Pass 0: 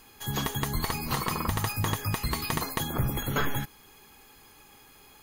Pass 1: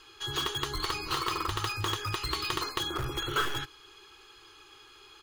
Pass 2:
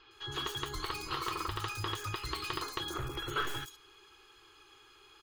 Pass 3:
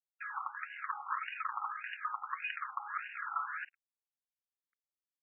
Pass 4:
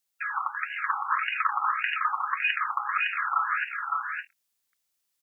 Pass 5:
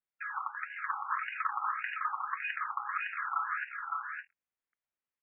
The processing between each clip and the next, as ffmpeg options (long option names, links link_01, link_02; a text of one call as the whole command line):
ffmpeg -i in.wav -filter_complex "[0:a]firequalizer=gain_entry='entry(120,0);entry(210,-21);entry(340,11);entry(610,-5);entry(1300,12);entry(2000,2);entry(3000,13);entry(13000,-14)':delay=0.05:min_phase=1,asplit=2[link_01][link_02];[link_02]aeval=exprs='(mod(10*val(0)+1,2)-1)/10':channel_layout=same,volume=-9.5dB[link_03];[link_01][link_03]amix=inputs=2:normalize=0,volume=-8dB" out.wav
ffmpeg -i in.wav -filter_complex "[0:a]acrossover=split=4700[link_01][link_02];[link_02]adelay=110[link_03];[link_01][link_03]amix=inputs=2:normalize=0,volume=-4.5dB" out.wav
ffmpeg -i in.wav -af "acompressor=threshold=-39dB:ratio=6,acrusher=bits=6:mix=0:aa=0.5,afftfilt=real='re*between(b*sr/1024,980*pow(2100/980,0.5+0.5*sin(2*PI*1.7*pts/sr))/1.41,980*pow(2100/980,0.5+0.5*sin(2*PI*1.7*pts/sr))*1.41)':imag='im*between(b*sr/1024,980*pow(2100/980,0.5+0.5*sin(2*PI*1.7*pts/sr))/1.41,980*pow(2100/980,0.5+0.5*sin(2*PI*1.7*pts/sr))*1.41)':win_size=1024:overlap=0.75,volume=9dB" out.wav
ffmpeg -i in.wav -af "highshelf=frequency=2500:gain=9.5,aecho=1:1:560|583:0.668|0.2,volume=8dB" out.wav
ffmpeg -i in.wav -af "lowpass=frequency=2300:width=0.5412,lowpass=frequency=2300:width=1.3066,volume=-7dB" out.wav